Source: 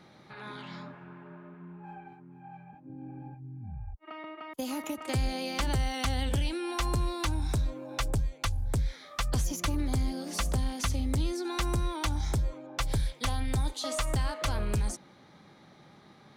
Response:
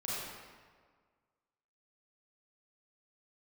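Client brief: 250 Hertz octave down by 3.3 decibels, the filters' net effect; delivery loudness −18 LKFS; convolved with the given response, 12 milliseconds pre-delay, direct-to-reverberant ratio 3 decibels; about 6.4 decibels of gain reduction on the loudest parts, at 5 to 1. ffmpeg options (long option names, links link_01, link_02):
-filter_complex "[0:a]equalizer=frequency=250:width_type=o:gain=-4.5,acompressor=threshold=-32dB:ratio=5,asplit=2[link_01][link_02];[1:a]atrim=start_sample=2205,adelay=12[link_03];[link_02][link_03]afir=irnorm=-1:irlink=0,volume=-6.5dB[link_04];[link_01][link_04]amix=inputs=2:normalize=0,volume=19dB"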